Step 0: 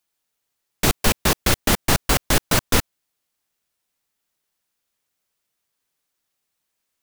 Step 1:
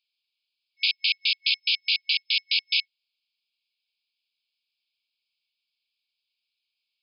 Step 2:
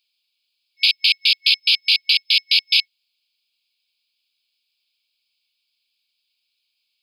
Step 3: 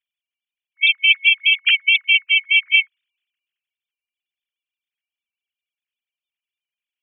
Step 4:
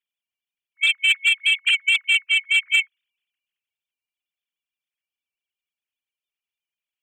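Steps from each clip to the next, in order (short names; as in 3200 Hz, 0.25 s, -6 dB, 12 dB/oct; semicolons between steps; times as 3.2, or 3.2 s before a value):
FFT band-pass 2200–5200 Hz; gain +3.5 dB
in parallel at -9 dB: soft clip -19 dBFS, distortion -14 dB; on the sum: high shelf 2900 Hz +9.5 dB
sine-wave speech; three-band expander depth 40%; gain +2 dB
soft clip -7.5 dBFS, distortion -18 dB; gain -2 dB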